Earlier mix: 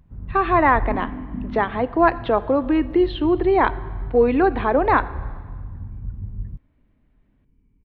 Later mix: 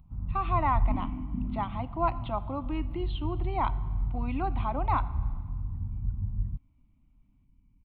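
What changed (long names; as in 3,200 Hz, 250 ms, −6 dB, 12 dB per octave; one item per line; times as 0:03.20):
speech −9.0 dB
second sound: send −10.5 dB
master: add phaser with its sweep stopped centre 1,700 Hz, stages 6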